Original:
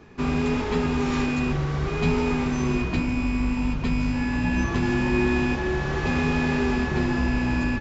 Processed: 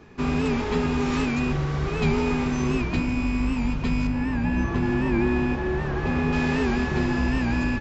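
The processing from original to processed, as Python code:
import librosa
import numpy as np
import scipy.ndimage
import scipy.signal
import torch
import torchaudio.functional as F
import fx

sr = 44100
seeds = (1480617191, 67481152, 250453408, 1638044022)

y = fx.high_shelf(x, sr, hz=3000.0, db=-11.5, at=(4.07, 6.33))
y = fx.record_warp(y, sr, rpm=78.0, depth_cents=100.0)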